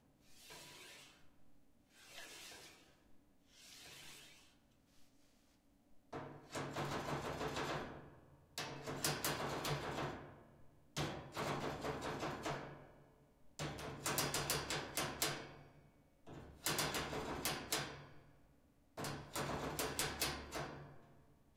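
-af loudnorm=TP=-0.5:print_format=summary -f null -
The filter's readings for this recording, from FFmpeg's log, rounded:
Input Integrated:    -42.8 LUFS
Input True Peak:     -19.9 dBTP
Input LRA:            15.0 LU
Input Threshold:     -54.5 LUFS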